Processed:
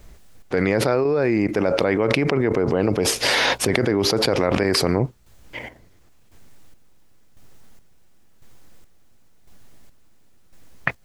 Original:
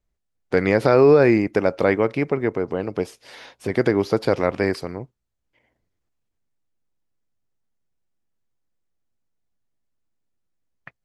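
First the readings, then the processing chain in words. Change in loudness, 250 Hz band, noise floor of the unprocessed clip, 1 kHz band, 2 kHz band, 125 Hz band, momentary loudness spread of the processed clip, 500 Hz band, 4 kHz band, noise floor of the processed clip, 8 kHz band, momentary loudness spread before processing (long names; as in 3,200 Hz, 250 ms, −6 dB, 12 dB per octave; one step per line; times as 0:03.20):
−0.5 dB, +0.5 dB, −77 dBFS, +1.0 dB, +3.5 dB, +2.0 dB, 10 LU, −2.0 dB, +15.5 dB, −51 dBFS, can't be measured, 16 LU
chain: square-wave tremolo 0.95 Hz, depth 60%, duty 40%
envelope flattener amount 100%
level −8.5 dB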